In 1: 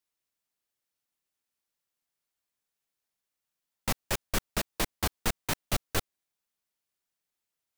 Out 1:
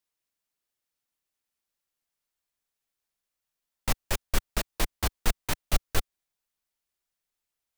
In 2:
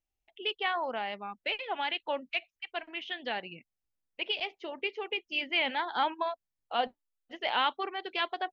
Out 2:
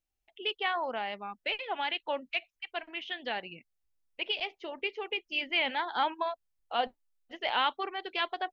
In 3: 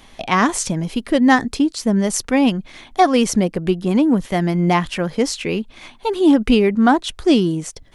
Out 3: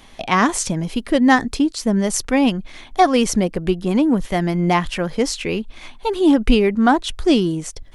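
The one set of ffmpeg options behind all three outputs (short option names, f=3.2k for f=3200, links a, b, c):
-af "asubboost=boost=2.5:cutoff=82"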